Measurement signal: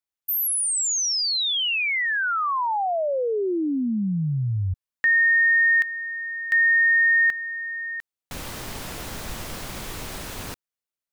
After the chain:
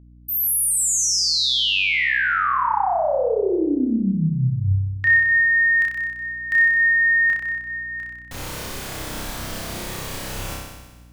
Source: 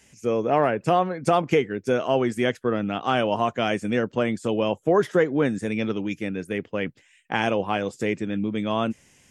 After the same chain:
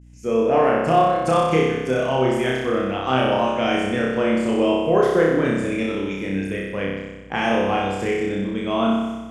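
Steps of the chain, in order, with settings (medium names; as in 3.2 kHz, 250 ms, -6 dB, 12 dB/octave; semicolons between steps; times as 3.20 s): expander -48 dBFS; flutter echo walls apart 5.3 m, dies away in 1.2 s; hum 60 Hz, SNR 26 dB; trim -1.5 dB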